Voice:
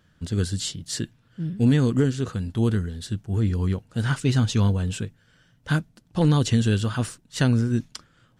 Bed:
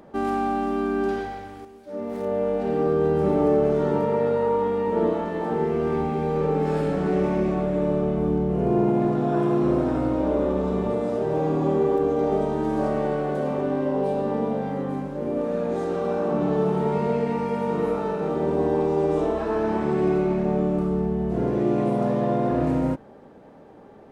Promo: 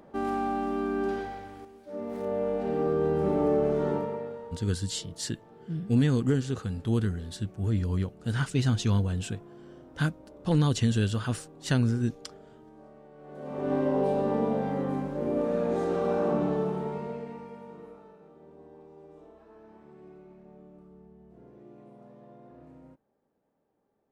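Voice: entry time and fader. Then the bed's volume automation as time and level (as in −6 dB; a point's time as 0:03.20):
4.30 s, −4.5 dB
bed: 0:03.91 −5 dB
0:04.73 −28 dB
0:13.12 −28 dB
0:13.73 −2 dB
0:16.28 −2 dB
0:18.32 −29 dB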